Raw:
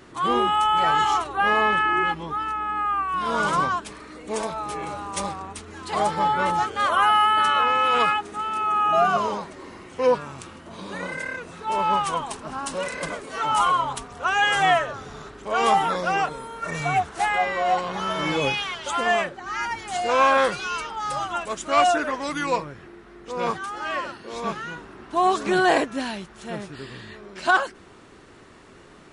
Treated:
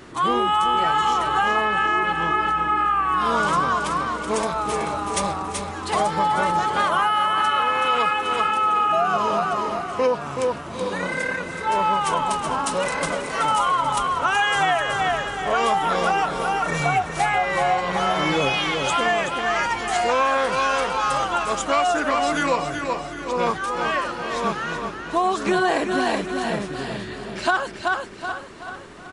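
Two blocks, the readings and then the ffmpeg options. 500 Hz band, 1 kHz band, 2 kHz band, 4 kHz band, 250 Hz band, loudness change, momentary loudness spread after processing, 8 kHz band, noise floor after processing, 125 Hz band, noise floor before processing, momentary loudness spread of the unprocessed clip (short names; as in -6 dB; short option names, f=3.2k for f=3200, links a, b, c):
+2.0 dB, +1.5 dB, +2.0 dB, +2.0 dB, +3.0 dB, +1.5 dB, 7 LU, +4.0 dB, -34 dBFS, +4.0 dB, -48 dBFS, 16 LU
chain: -filter_complex "[0:a]asplit=2[a][b];[b]aecho=0:1:376|752|1128|1504:0.422|0.156|0.0577|0.0214[c];[a][c]amix=inputs=2:normalize=0,acompressor=threshold=-22dB:ratio=6,asplit=2[d][e];[e]aecho=0:1:814:0.188[f];[d][f]amix=inputs=2:normalize=0,volume=5dB"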